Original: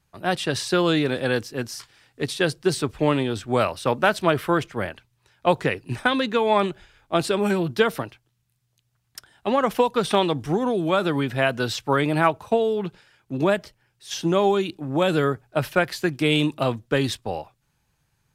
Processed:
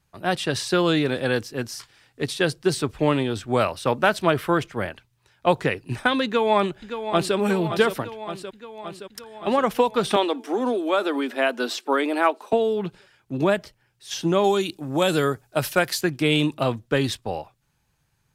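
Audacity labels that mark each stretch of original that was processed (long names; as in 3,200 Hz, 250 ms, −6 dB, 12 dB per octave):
6.250000	7.360000	delay throw 570 ms, feedback 70%, level −9.5 dB
10.160000	12.530000	elliptic high-pass filter 240 Hz
14.440000	16.010000	bass and treble bass −2 dB, treble +10 dB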